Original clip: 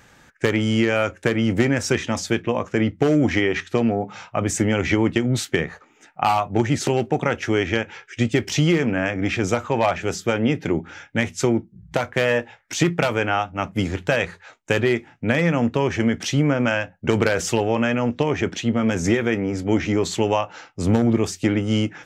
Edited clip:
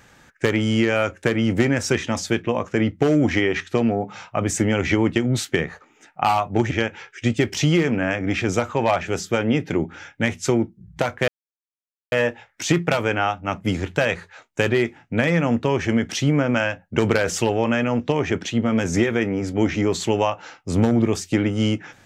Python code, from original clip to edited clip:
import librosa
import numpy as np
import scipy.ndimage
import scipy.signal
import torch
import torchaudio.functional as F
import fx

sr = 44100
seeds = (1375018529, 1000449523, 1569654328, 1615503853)

y = fx.edit(x, sr, fx.cut(start_s=6.71, length_s=0.95),
    fx.insert_silence(at_s=12.23, length_s=0.84), tone=tone)